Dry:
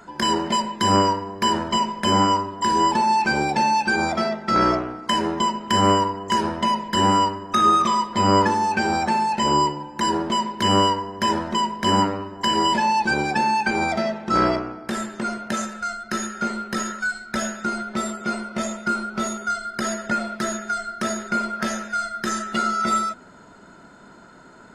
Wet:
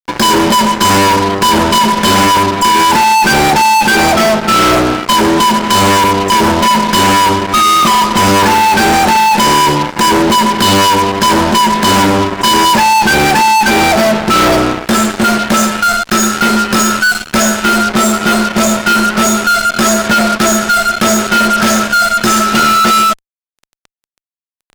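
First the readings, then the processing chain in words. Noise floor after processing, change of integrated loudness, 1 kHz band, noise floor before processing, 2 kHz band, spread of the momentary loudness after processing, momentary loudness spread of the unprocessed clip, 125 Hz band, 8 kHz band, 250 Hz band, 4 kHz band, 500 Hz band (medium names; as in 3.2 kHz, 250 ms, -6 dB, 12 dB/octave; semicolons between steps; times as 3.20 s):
under -85 dBFS, +12.5 dB, +11.5 dB, -47 dBFS, +14.5 dB, 3 LU, 9 LU, +11.0 dB, +17.0 dB, +12.5 dB, +13.5 dB, +12.0 dB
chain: band-stop 1.9 kHz, Q 5.4; fuzz box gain 34 dB, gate -37 dBFS; trim +6 dB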